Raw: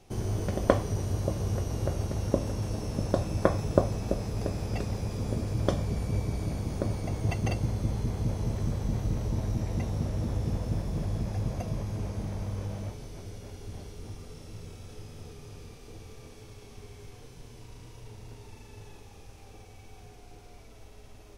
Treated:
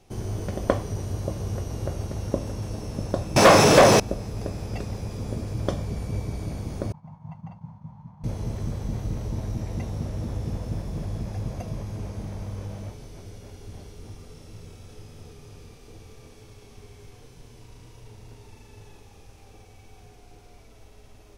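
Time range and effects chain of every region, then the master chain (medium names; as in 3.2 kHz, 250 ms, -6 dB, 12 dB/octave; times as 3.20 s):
3.36–4.00 s: high-pass 120 Hz + overdrive pedal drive 37 dB, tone 5.9 kHz, clips at -4 dBFS
6.92–8.24 s: two resonant band-passes 390 Hz, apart 2.5 oct + expander -44 dBFS
whole clip: none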